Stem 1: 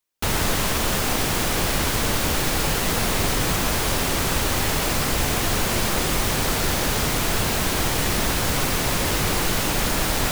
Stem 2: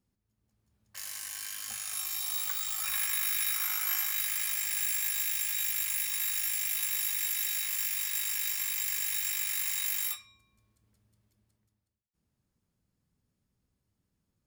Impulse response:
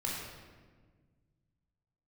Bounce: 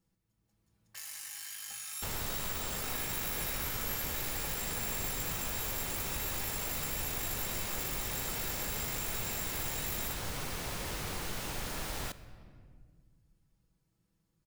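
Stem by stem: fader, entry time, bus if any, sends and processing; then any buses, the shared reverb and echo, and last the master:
-8.0 dB, 1.80 s, send -17 dB, bell 300 Hz -2.5 dB
-1.5 dB, 0.00 s, send -11 dB, comb 6.1 ms, depth 62%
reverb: on, RT60 1.5 s, pre-delay 17 ms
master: compressor 1.5:1, threshold -51 dBFS, peak gain reduction 10.5 dB

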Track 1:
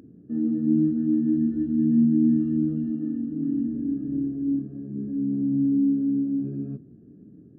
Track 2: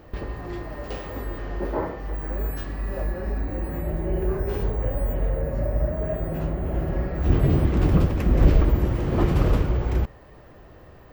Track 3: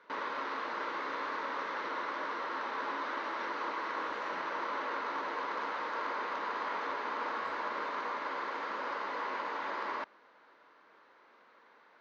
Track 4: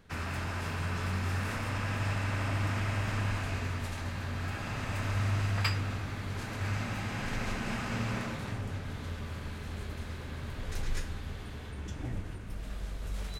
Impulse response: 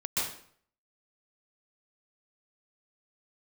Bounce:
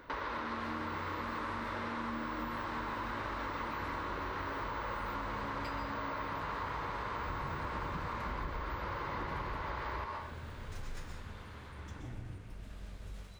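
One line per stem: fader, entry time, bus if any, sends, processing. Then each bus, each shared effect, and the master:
-16.0 dB, 0.00 s, send -3.5 dB, HPF 310 Hz 6 dB/oct
-13.0 dB, 0.00 s, no send, dry
+2.0 dB, 0.00 s, send -7 dB, dry
-19.0 dB, 0.00 s, send -9.5 dB, median filter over 3 samples; AGC gain up to 8.5 dB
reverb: on, RT60 0.60 s, pre-delay 0.118 s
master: compressor 6:1, threshold -36 dBFS, peak gain reduction 14.5 dB

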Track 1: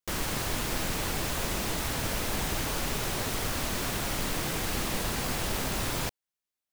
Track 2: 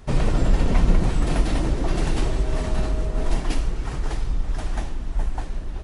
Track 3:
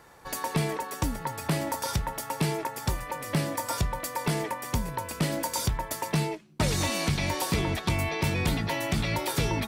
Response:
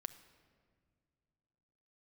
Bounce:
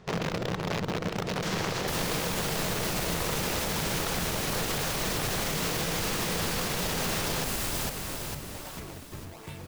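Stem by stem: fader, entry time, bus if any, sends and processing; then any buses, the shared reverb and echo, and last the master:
+1.5 dB, 1.35 s, bus A, send -14 dB, echo send -4 dB, high shelf 4400 Hz +5.5 dB
-4.0 dB, 0.00 s, bus A, send -12 dB, no echo send, compressor 4:1, threshold -19 dBFS, peak gain reduction 8 dB; wrapped overs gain 18 dB
-15.0 dB, 1.25 s, no bus, no send, no echo send, decimation with a swept rate 34×, swing 160% 1.3 Hz
bus A: 0.0 dB, speaker cabinet 100–7200 Hz, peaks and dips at 170 Hz +8 dB, 270 Hz -7 dB, 470 Hz +6 dB; limiter -19 dBFS, peak gain reduction 7.5 dB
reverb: on, pre-delay 6 ms
echo: feedback echo 0.452 s, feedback 50%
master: limiter -20 dBFS, peak gain reduction 6 dB

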